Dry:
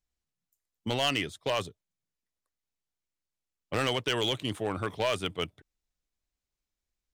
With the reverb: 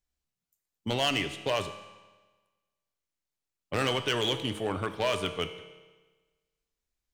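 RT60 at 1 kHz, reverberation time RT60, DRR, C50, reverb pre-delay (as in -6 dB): 1.3 s, 1.3 s, 8.0 dB, 10.5 dB, 6 ms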